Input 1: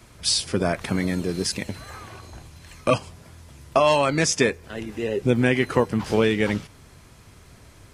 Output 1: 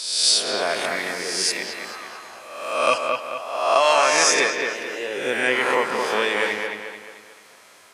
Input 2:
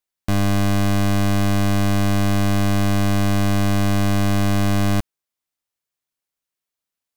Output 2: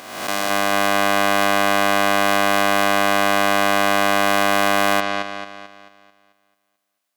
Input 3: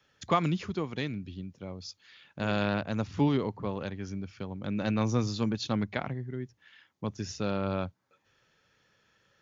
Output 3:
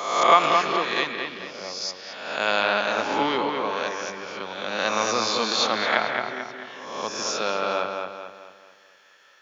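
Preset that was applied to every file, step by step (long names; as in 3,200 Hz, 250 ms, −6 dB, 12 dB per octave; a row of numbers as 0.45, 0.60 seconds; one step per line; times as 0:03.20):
peak hold with a rise ahead of every peak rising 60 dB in 1.01 s
high-pass filter 640 Hz 12 dB per octave
delay with a low-pass on its return 220 ms, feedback 44%, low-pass 3,500 Hz, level −4.5 dB
normalise the peak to −3 dBFS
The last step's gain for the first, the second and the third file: +1.5, +5.5, +10.0 decibels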